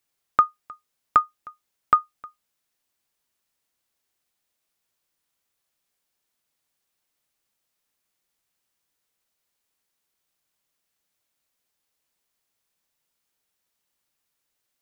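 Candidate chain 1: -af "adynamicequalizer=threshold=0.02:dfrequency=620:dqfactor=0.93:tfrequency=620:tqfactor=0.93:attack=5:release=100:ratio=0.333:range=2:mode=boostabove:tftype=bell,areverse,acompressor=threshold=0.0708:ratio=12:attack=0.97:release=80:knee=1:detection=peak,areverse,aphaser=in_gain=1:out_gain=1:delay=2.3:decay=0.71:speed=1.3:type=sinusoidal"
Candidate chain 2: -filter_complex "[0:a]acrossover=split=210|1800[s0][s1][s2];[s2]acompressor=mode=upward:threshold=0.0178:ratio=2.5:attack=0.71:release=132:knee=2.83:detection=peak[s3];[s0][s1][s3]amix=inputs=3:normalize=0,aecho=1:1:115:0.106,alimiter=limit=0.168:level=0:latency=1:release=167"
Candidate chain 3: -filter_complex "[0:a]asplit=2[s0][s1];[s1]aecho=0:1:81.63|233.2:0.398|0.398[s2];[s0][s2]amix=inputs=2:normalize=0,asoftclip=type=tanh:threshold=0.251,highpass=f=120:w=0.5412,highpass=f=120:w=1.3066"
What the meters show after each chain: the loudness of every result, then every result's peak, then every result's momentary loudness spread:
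-36.0 LUFS, -35.0 LUFS, -26.5 LUFS; -17.5 dBFS, -15.5 dBFS, -10.0 dBFS; 12 LU, 21 LU, 7 LU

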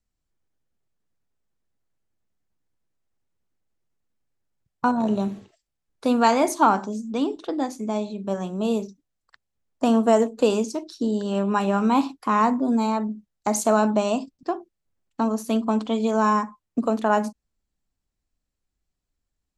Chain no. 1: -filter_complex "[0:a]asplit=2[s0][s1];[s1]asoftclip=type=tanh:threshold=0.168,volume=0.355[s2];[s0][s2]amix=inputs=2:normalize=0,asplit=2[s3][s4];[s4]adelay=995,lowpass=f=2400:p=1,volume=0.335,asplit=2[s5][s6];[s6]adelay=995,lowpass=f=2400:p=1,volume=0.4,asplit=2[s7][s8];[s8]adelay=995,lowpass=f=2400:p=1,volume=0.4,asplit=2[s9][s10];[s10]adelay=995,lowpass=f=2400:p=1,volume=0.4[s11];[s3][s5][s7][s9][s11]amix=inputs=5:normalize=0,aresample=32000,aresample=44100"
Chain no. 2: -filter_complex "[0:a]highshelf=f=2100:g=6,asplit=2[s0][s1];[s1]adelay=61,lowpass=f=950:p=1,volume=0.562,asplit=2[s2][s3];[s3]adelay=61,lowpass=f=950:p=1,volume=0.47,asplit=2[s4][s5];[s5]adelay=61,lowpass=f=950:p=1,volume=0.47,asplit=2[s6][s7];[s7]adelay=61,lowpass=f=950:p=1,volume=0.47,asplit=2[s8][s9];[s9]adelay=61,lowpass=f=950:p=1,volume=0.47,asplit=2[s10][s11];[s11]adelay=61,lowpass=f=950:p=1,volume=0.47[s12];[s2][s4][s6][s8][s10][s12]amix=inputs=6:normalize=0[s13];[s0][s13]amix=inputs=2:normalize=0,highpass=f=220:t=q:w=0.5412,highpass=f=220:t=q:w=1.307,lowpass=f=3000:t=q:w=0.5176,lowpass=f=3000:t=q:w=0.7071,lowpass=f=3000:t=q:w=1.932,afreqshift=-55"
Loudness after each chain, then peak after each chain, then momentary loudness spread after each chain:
-21.0 LUFS, -23.0 LUFS; -4.5 dBFS, -3.5 dBFS; 16 LU, 11 LU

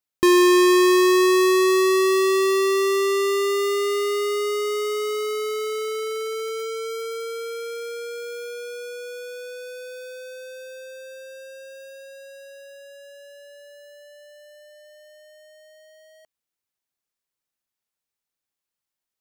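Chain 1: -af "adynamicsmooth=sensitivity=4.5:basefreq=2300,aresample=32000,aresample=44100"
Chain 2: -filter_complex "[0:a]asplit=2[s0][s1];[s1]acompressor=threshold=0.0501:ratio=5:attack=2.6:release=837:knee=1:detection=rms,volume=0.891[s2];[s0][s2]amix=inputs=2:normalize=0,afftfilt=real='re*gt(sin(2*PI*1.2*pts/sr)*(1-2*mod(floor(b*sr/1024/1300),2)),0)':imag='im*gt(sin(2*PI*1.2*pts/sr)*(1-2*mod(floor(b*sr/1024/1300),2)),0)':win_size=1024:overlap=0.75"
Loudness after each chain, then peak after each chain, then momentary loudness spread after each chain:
-20.5 LUFS, -21.0 LUFS; -13.0 dBFS, -7.5 dBFS; 22 LU, 22 LU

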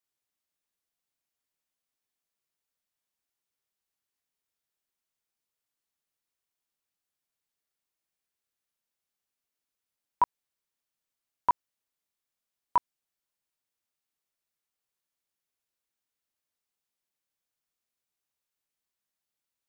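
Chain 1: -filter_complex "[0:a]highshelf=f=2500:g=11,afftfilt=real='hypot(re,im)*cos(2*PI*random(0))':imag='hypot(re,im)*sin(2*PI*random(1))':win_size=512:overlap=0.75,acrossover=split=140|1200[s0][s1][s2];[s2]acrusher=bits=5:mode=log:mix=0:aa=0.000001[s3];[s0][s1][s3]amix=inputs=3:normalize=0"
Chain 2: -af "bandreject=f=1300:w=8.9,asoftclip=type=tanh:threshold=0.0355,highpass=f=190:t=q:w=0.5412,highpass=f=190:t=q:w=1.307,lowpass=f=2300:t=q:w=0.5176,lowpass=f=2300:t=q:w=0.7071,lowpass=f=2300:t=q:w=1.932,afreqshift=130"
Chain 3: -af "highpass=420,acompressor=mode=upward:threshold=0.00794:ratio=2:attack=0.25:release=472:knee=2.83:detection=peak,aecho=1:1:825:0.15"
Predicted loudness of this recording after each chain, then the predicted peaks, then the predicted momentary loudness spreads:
-36.5 LUFS, -42.5 LUFS, -34.0 LUFS; -15.0 dBFS, -25.5 dBFS, -15.0 dBFS; 2 LU, 2 LU, 16 LU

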